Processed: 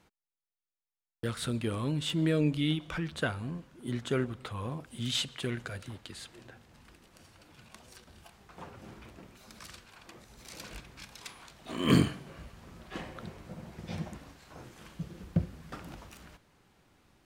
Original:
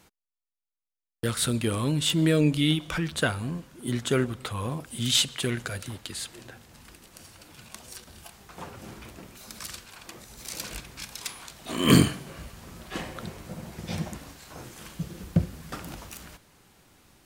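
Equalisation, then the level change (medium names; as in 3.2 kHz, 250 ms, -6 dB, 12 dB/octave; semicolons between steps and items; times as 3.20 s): treble shelf 5.7 kHz -11.5 dB; -5.5 dB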